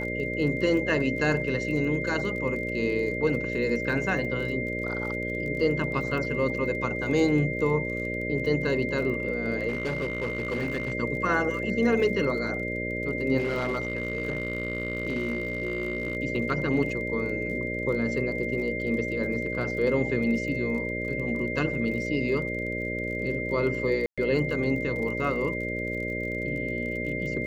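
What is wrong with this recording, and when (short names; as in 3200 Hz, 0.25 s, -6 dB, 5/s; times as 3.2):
buzz 60 Hz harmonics 10 -33 dBFS
crackle 34/s -36 dBFS
tone 2100 Hz -32 dBFS
9.68–10.93 clipped -24.5 dBFS
13.38–16.17 clipped -23 dBFS
24.06–24.18 gap 0.116 s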